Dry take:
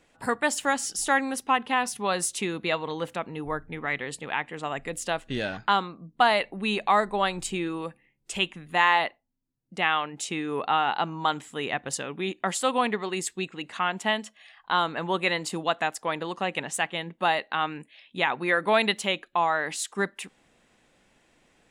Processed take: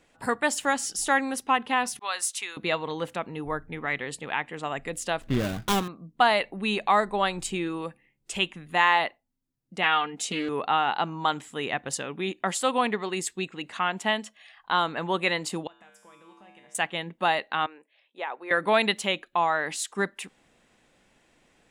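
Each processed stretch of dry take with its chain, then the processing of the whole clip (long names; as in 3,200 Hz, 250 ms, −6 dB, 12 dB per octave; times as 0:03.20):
0:01.99–0:02.57: high-pass filter 1,100 Hz + downward expander −42 dBFS
0:05.21–0:05.88: gap after every zero crossing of 0.26 ms + low-shelf EQ 350 Hz +9.5 dB + notch filter 880 Hz, Q 11
0:09.83–0:10.49: comb filter 4.2 ms, depth 77% + highs frequency-modulated by the lows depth 0.17 ms
0:15.67–0:16.75: notch filter 4,200 Hz, Q 5.3 + downward compressor 3 to 1, threshold −37 dBFS + tuned comb filter 67 Hz, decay 1 s, harmonics odd, mix 90%
0:17.66–0:18.51: four-pole ladder high-pass 360 Hz, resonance 25% + high-shelf EQ 2,100 Hz −11.5 dB
whole clip: no processing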